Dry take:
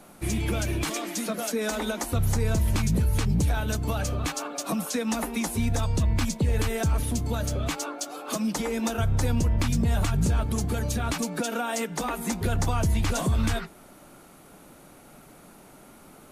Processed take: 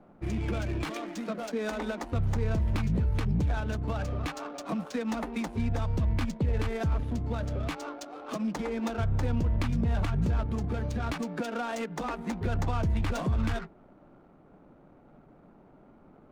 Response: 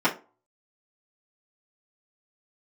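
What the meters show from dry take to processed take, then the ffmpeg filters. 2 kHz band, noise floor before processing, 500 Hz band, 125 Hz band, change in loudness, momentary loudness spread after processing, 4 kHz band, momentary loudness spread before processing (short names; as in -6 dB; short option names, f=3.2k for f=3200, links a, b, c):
-5.0 dB, -51 dBFS, -3.5 dB, -3.5 dB, -4.0 dB, 7 LU, -9.5 dB, 5 LU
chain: -af "adynamicsmooth=sensitivity=5:basefreq=930,volume=-3.5dB"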